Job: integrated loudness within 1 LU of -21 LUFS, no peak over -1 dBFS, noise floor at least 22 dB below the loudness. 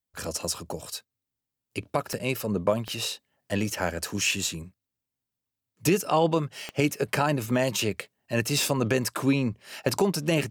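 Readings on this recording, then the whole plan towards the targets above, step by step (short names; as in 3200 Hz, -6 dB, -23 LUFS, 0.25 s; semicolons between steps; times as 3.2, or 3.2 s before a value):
clicks 4; loudness -27.0 LUFS; peak -11.5 dBFS; loudness target -21.0 LUFS
-> de-click; gain +6 dB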